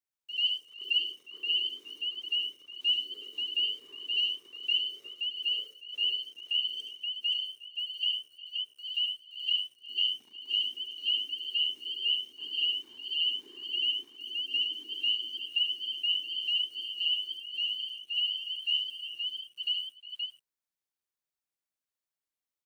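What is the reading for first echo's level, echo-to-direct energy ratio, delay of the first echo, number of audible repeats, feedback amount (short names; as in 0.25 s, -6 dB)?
-5.5 dB, -1.5 dB, 71 ms, 4, no steady repeat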